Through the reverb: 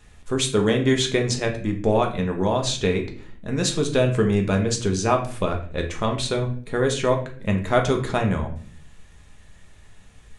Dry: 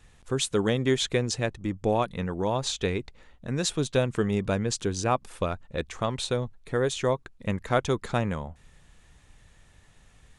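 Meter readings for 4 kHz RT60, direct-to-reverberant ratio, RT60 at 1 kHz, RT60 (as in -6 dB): 0.40 s, 2.0 dB, 0.40 s, 0.50 s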